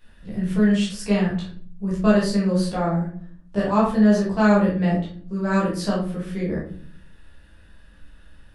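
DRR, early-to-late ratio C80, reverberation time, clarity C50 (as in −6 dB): −7.0 dB, 9.5 dB, 0.50 s, 4.0 dB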